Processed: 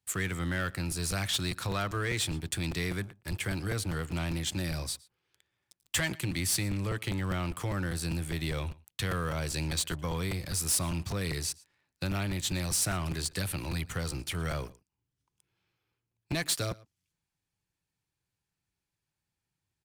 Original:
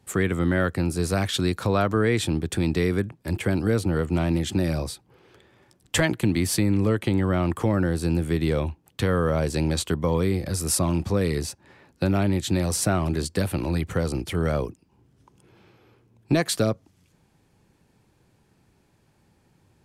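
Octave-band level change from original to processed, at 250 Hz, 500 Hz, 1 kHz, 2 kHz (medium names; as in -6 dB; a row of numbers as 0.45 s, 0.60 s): -12.0 dB, -13.5 dB, -8.0 dB, -4.5 dB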